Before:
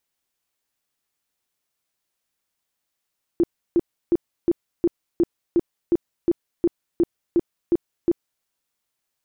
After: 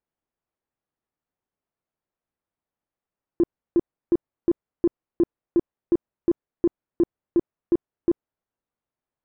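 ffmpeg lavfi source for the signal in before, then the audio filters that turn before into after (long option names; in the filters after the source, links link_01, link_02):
-f lavfi -i "aevalsrc='0.211*sin(2*PI*342*mod(t,0.36))*lt(mod(t,0.36),12/342)':duration=5.04:sample_rate=44100"
-af "adynamicsmooth=sensitivity=0.5:basefreq=1300"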